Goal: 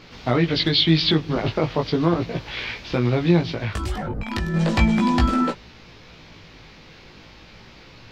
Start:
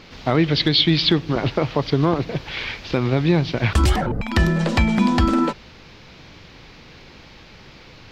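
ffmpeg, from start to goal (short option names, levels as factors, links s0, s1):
-filter_complex "[0:a]asettb=1/sr,asplit=3[s0][s1][s2];[s0]atrim=end=3.534[s3];[s1]atrim=start=3.53:end=4.54,asetpts=PTS-STARTPTS,afade=t=in:d=0.004:c=qsin,afade=t=out:st=1.006:d=0.004:c=qsin,acompressor=threshold=0.0794:ratio=6[s4];[s2]atrim=start=4.536[s5];[s3][s4]acrossfade=d=0.004:c1=hsin:c2=qsin[s6];[s6][s5]acrossfade=d=0.004:c1=qsin:c2=hsin,flanger=delay=16.5:depth=2.8:speed=0.36,volume=1.19"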